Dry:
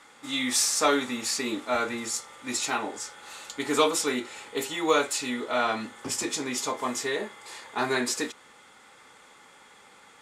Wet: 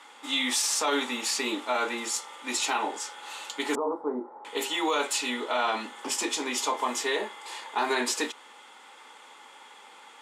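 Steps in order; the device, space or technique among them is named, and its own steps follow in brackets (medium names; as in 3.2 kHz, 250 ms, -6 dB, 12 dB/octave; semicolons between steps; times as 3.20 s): laptop speaker (high-pass 250 Hz 24 dB/octave; peaking EQ 910 Hz +8 dB 0.47 oct; peaking EQ 3 kHz +7 dB 0.55 oct; peak limiter -17 dBFS, peak gain reduction 10 dB); 3.75–4.45 s: inverse Chebyshev low-pass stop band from 2.5 kHz, stop band 50 dB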